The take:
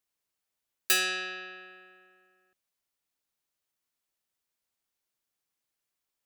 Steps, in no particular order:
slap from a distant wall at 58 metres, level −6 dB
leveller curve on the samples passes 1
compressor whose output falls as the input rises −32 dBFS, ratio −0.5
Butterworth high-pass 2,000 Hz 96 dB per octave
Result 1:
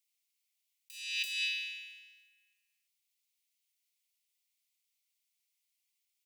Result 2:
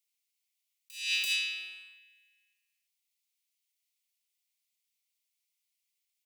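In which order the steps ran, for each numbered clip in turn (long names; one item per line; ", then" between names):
leveller curve on the samples, then slap from a distant wall, then compressor whose output falls as the input rises, then Butterworth high-pass
Butterworth high-pass, then leveller curve on the samples, then slap from a distant wall, then compressor whose output falls as the input rises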